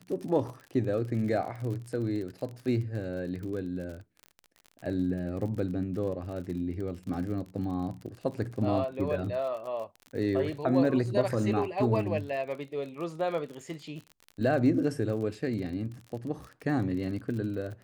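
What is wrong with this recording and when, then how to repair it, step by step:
surface crackle 45 per second −37 dBFS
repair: click removal

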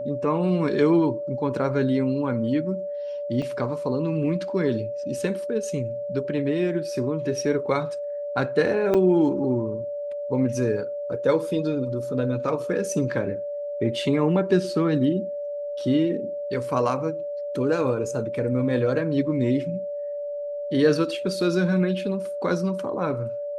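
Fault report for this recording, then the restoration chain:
whistle 580 Hz −28 dBFS
0:03.42: drop-out 4.2 ms
0:08.94–0:08.95: drop-out 6 ms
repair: notch filter 580 Hz, Q 30
repair the gap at 0:03.42, 4.2 ms
repair the gap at 0:08.94, 6 ms

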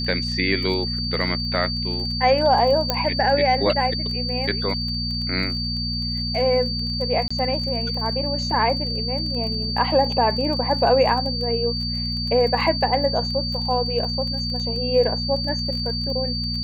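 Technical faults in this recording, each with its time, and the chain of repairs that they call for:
surface crackle 21 per second −29 dBFS
mains hum 60 Hz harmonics 4 −28 dBFS
whistle 4,600 Hz −26 dBFS
0:02.90: click −5 dBFS
0:07.28–0:07.30: drop-out 25 ms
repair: click removal
hum removal 60 Hz, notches 4
notch filter 4,600 Hz, Q 30
repair the gap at 0:07.28, 25 ms

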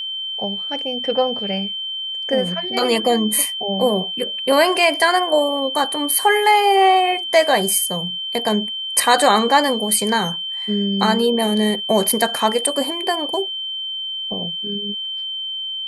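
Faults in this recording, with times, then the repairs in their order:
whistle 3,100 Hz −24 dBFS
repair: notch filter 3,100 Hz, Q 30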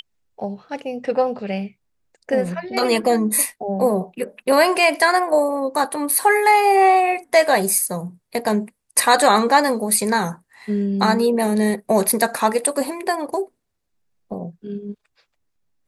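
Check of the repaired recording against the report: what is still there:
none of them is left

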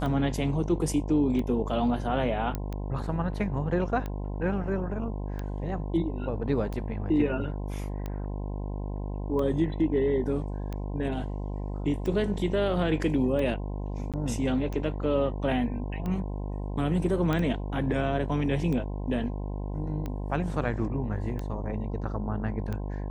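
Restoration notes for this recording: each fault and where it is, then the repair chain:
mains buzz 50 Hz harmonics 21 −33 dBFS
scratch tick 45 rpm −22 dBFS
0:02.55: click −17 dBFS
0:14.12–0:14.14: drop-out 17 ms
0:17.33: click −16 dBFS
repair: click removal
hum removal 50 Hz, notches 21
repair the gap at 0:14.12, 17 ms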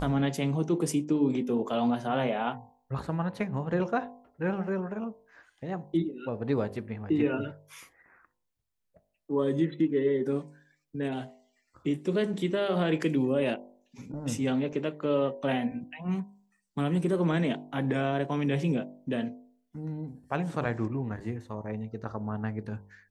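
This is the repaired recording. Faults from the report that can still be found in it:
none of them is left

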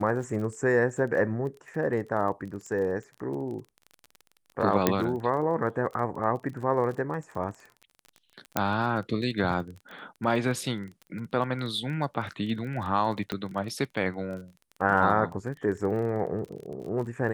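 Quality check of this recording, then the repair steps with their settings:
surface crackle 28 per second −36 dBFS
0:04.87: click −6 dBFS
0:08.57: click −9 dBFS
0:13.32: click −16 dBFS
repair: click removal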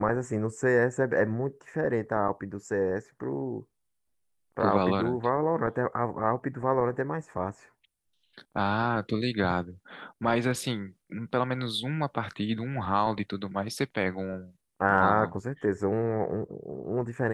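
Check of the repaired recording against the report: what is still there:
0:04.87: click

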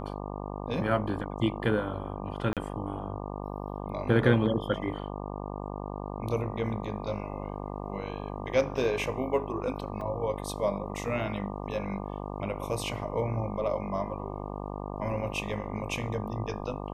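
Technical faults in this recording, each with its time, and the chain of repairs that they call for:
mains buzz 50 Hz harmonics 24 −37 dBFS
0:02.53–0:02.57: drop-out 37 ms
0:10.01: drop-out 3.2 ms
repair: hum removal 50 Hz, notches 24
repair the gap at 0:02.53, 37 ms
repair the gap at 0:10.01, 3.2 ms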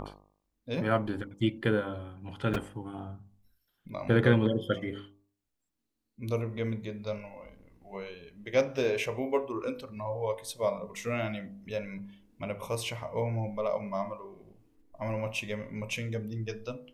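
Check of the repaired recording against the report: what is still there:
none of them is left

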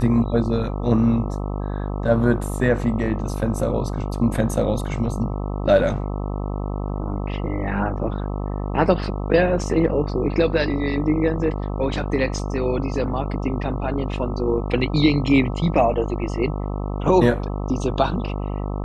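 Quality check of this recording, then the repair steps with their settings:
mains buzz 50 Hz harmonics 26 −26 dBFS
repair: hum removal 50 Hz, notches 26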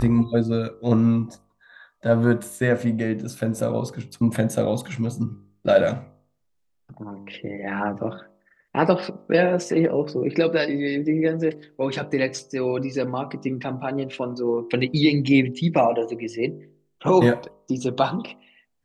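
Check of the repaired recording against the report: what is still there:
none of them is left

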